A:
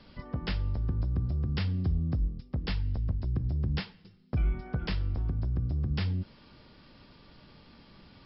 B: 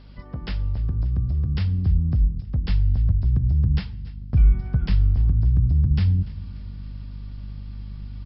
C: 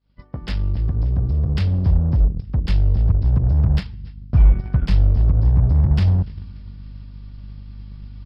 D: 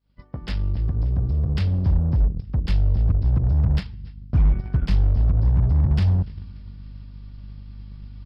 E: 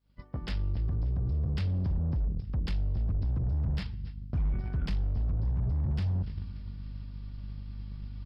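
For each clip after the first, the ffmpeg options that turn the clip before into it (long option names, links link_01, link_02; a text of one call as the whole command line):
ffmpeg -i in.wav -af "aeval=exprs='val(0)+0.00562*(sin(2*PI*50*n/s)+sin(2*PI*2*50*n/s)/2+sin(2*PI*3*50*n/s)/3+sin(2*PI*4*50*n/s)/4+sin(2*PI*5*50*n/s)/5)':channel_layout=same,asubboost=boost=4.5:cutoff=190,aecho=1:1:290|580|870|1160:0.1|0.05|0.025|0.0125" out.wav
ffmpeg -i in.wav -filter_complex "[0:a]agate=range=-33dB:threshold=-32dB:ratio=3:detection=peak,asplit=2[link_01][link_02];[link_02]acrusher=bits=3:mix=0:aa=0.5,volume=-6.5dB[link_03];[link_01][link_03]amix=inputs=2:normalize=0" out.wav
ffmpeg -i in.wav -af "asoftclip=type=hard:threshold=-10dB,volume=-2.5dB" out.wav
ffmpeg -i in.wav -af "alimiter=limit=-23dB:level=0:latency=1:release=14,volume=-1.5dB" out.wav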